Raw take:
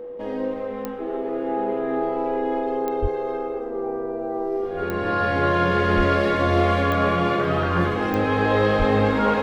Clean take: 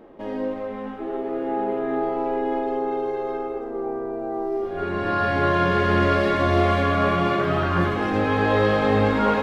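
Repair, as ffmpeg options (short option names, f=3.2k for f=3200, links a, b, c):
-filter_complex "[0:a]adeclick=t=4,bandreject=f=490:w=30,asplit=3[a][b][c];[a]afade=t=out:st=3.01:d=0.02[d];[b]highpass=f=140:w=0.5412,highpass=f=140:w=1.3066,afade=t=in:st=3.01:d=0.02,afade=t=out:st=3.13:d=0.02[e];[c]afade=t=in:st=3.13:d=0.02[f];[d][e][f]amix=inputs=3:normalize=0,asplit=3[g][h][i];[g]afade=t=out:st=5.96:d=0.02[j];[h]highpass=f=140:w=0.5412,highpass=f=140:w=1.3066,afade=t=in:st=5.96:d=0.02,afade=t=out:st=6.08:d=0.02[k];[i]afade=t=in:st=6.08:d=0.02[l];[j][k][l]amix=inputs=3:normalize=0,asplit=3[m][n][o];[m]afade=t=out:st=8.78:d=0.02[p];[n]highpass=f=140:w=0.5412,highpass=f=140:w=1.3066,afade=t=in:st=8.78:d=0.02,afade=t=out:st=8.9:d=0.02[q];[o]afade=t=in:st=8.9:d=0.02[r];[p][q][r]amix=inputs=3:normalize=0"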